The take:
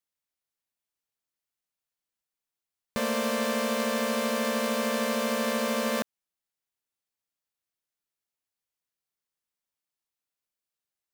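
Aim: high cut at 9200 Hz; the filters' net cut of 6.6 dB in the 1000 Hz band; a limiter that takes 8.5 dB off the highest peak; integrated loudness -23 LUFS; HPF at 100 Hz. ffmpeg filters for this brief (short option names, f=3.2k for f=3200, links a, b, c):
-af "highpass=100,lowpass=9.2k,equalizer=f=1k:t=o:g=-8,volume=11dB,alimiter=limit=-14dB:level=0:latency=1"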